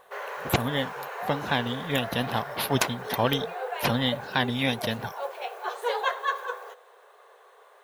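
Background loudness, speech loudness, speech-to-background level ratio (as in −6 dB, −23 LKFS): −34.5 LKFS, −28.0 LKFS, 6.5 dB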